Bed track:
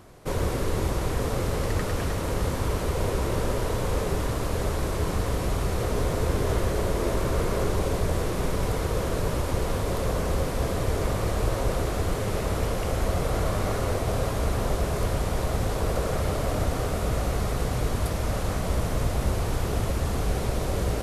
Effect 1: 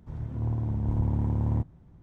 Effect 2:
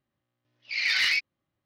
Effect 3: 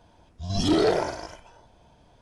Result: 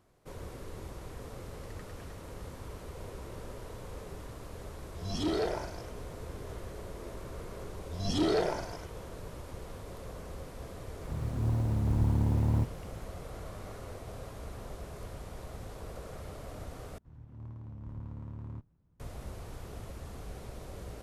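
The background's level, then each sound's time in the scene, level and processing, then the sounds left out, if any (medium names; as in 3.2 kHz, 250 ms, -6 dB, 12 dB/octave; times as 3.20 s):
bed track -17.5 dB
4.55 s: add 3 -10 dB
7.50 s: add 3 -7 dB
11.02 s: add 1 -1.5 dB + companding laws mixed up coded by mu
16.98 s: replace with 1 -16 dB + comb filter that takes the minimum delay 0.73 ms
not used: 2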